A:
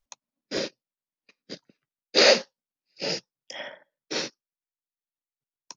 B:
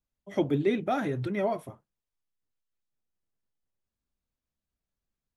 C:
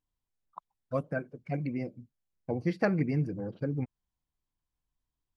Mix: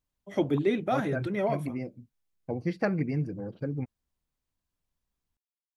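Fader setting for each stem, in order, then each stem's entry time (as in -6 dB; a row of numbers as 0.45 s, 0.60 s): mute, 0.0 dB, -0.5 dB; mute, 0.00 s, 0.00 s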